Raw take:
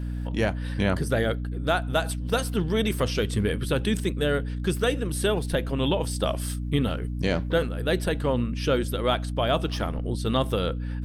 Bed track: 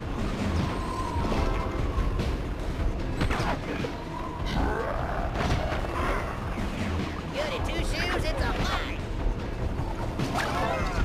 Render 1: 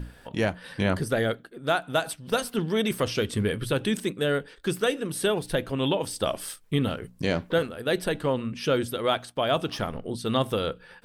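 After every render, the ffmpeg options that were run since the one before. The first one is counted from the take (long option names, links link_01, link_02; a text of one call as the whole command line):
ffmpeg -i in.wav -af "bandreject=frequency=60:width_type=h:width=6,bandreject=frequency=120:width_type=h:width=6,bandreject=frequency=180:width_type=h:width=6,bandreject=frequency=240:width_type=h:width=6,bandreject=frequency=300:width_type=h:width=6" out.wav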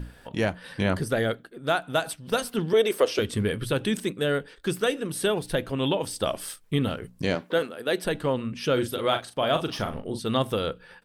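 ffmpeg -i in.wav -filter_complex "[0:a]asettb=1/sr,asplit=3[link_01][link_02][link_03];[link_01]atrim=end=2.734[link_04];[link_02]atrim=start=2.73:end=3.19,asetpts=PTS-STARTPTS,afade=type=in:duration=0.004:curve=qsin,afade=type=out:start_time=0.456:duration=0.004:curve=qsin,highpass=frequency=430:width_type=q:width=2.4[link_05];[link_03]atrim=start=3.186[link_06];[link_04][link_05]acrossfade=duration=0.004:curve1=hsin:curve2=qsin[link_07];[link_07][link_06]acrossfade=duration=0.004:curve1=qsin:curve2=hsin,asettb=1/sr,asplit=3[link_08][link_09][link_10];[link_08]atrim=end=7.354[link_11];[link_09]atrim=start=7.35:end=8.05,asetpts=PTS-STARTPTS,afade=type=in:duration=0.004:curve=qsin,afade=type=out:start_time=0.696:duration=0.004:curve=qsin,highpass=230[link_12];[link_10]atrim=start=8.046[link_13];[link_11][link_12]acrossfade=duration=0.004:curve1=hsin:curve2=qsin[link_14];[link_14][link_13]acrossfade=duration=0.004:curve1=qsin:curve2=hsin,asplit=3[link_15][link_16][link_17];[link_15]afade=type=out:start_time=8.76:duration=0.02[link_18];[link_16]asplit=2[link_19][link_20];[link_20]adelay=39,volume=-8dB[link_21];[link_19][link_21]amix=inputs=2:normalize=0,afade=type=in:start_time=8.76:duration=0.02,afade=type=out:start_time=10.2:duration=0.02[link_22];[link_17]afade=type=in:start_time=10.2:duration=0.02[link_23];[link_18][link_22][link_23]amix=inputs=3:normalize=0" out.wav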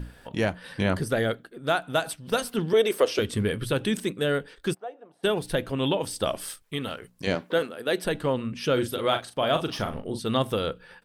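ffmpeg -i in.wav -filter_complex "[0:a]asplit=3[link_01][link_02][link_03];[link_01]afade=type=out:start_time=4.73:duration=0.02[link_04];[link_02]bandpass=frequency=740:width_type=q:width=6.6,afade=type=in:start_time=4.73:duration=0.02,afade=type=out:start_time=5.23:duration=0.02[link_05];[link_03]afade=type=in:start_time=5.23:duration=0.02[link_06];[link_04][link_05][link_06]amix=inputs=3:normalize=0,asettb=1/sr,asplit=3[link_07][link_08][link_09];[link_07]atrim=end=6.624[link_10];[link_08]atrim=start=6.62:end=7.27,asetpts=PTS-STARTPTS,afade=type=in:duration=0.004:curve=qsin,afade=type=out:start_time=0.646:duration=0.004:curve=qsin,lowshelf=frequency=390:gain=-11.5[link_11];[link_09]atrim=start=7.266[link_12];[link_10][link_11]acrossfade=duration=0.004:curve1=hsin:curve2=qsin[link_13];[link_13][link_12]acrossfade=duration=0.004:curve1=qsin:curve2=hsin" out.wav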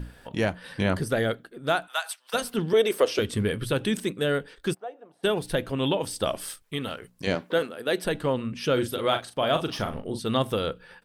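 ffmpeg -i in.wav -filter_complex "[0:a]asplit=3[link_01][link_02][link_03];[link_01]afade=type=out:start_time=1.86:duration=0.02[link_04];[link_02]highpass=frequency=870:width=0.5412,highpass=frequency=870:width=1.3066,afade=type=in:start_time=1.86:duration=0.02,afade=type=out:start_time=2.33:duration=0.02[link_05];[link_03]afade=type=in:start_time=2.33:duration=0.02[link_06];[link_04][link_05][link_06]amix=inputs=3:normalize=0" out.wav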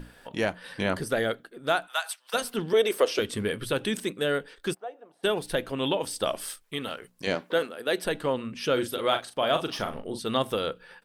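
ffmpeg -i in.wav -af "equalizer=frequency=71:width=0.45:gain=-10" out.wav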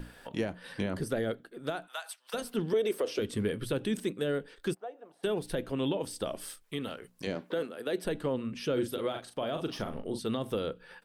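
ffmpeg -i in.wav -filter_complex "[0:a]alimiter=limit=-17dB:level=0:latency=1:release=31,acrossover=split=480[link_01][link_02];[link_02]acompressor=threshold=-45dB:ratio=2[link_03];[link_01][link_03]amix=inputs=2:normalize=0" out.wav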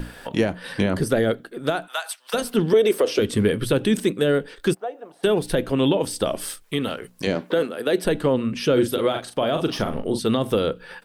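ffmpeg -i in.wav -af "volume=11.5dB" out.wav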